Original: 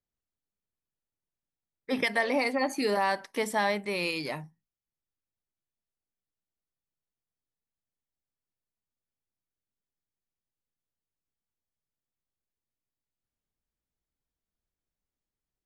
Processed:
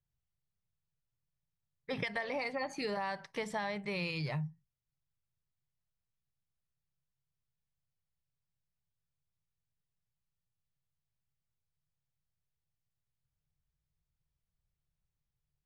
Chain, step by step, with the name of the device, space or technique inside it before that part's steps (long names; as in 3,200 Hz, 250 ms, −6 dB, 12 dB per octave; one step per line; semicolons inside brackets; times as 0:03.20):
jukebox (low-pass filter 5,700 Hz 12 dB per octave; low shelf with overshoot 190 Hz +9.5 dB, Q 3; downward compressor, threshold −30 dBFS, peak gain reduction 8 dB)
level −3 dB